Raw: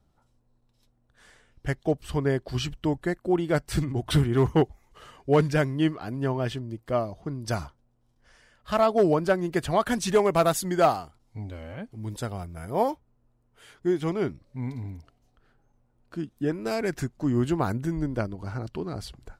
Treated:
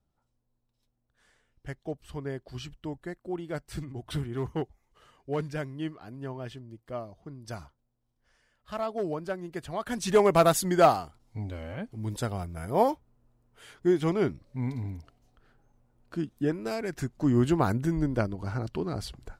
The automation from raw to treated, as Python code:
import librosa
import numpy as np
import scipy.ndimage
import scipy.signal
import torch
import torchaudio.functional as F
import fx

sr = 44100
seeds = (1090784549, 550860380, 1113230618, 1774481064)

y = fx.gain(x, sr, db=fx.line((9.77, -10.5), (10.21, 1.0), (16.35, 1.0), (16.88, -6.0), (17.17, 1.0)))